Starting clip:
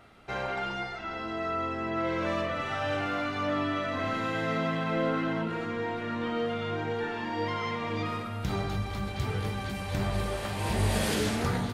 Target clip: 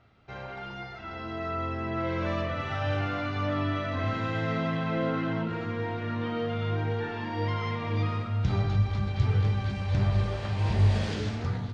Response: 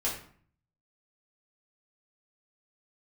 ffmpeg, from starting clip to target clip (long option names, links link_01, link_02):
-af "lowpass=frequency=6000:width=0.5412,lowpass=frequency=6000:width=1.3066,equalizer=frequency=100:width_type=o:width=1.1:gain=11.5,dynaudnorm=framelen=180:gausssize=11:maxgain=7dB,volume=-8.5dB"